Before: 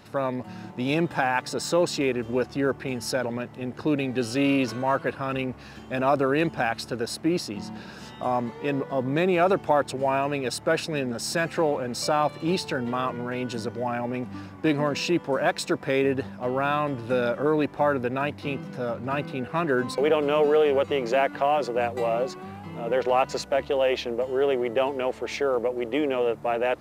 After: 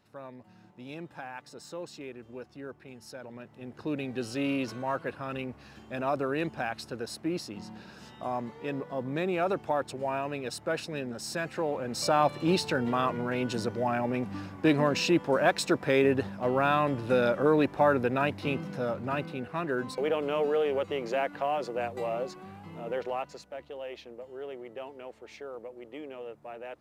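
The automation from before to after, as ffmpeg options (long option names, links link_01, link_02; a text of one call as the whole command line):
ffmpeg -i in.wav -af "volume=-0.5dB,afade=type=in:start_time=3.17:duration=0.89:silence=0.316228,afade=type=in:start_time=11.64:duration=0.6:silence=0.446684,afade=type=out:start_time=18.6:duration=0.94:silence=0.473151,afade=type=out:start_time=22.81:duration=0.57:silence=0.316228" out.wav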